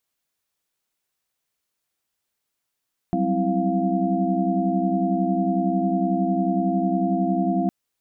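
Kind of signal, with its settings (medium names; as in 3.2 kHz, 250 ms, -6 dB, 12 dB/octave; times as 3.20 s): chord F#3/G3/C4/E4/F5 sine, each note -25.5 dBFS 4.56 s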